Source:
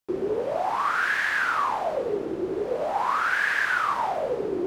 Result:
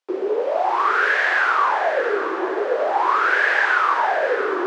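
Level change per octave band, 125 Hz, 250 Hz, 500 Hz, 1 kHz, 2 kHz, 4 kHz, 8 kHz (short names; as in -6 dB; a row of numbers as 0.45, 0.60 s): under -20 dB, +2.0 dB, +6.0 dB, +6.5 dB, +6.5 dB, +4.5 dB, n/a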